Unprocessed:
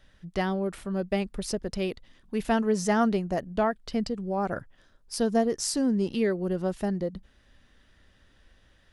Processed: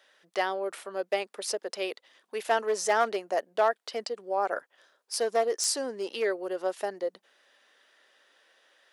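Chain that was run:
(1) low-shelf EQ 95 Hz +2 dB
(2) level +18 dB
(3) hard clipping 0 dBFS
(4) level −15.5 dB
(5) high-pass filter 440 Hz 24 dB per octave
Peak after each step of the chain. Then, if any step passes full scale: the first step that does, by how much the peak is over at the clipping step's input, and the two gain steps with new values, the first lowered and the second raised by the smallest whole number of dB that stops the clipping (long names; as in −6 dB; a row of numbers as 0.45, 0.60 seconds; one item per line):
−12.0, +6.0, 0.0, −15.5, −11.5 dBFS
step 2, 6.0 dB
step 2 +12 dB, step 4 −9.5 dB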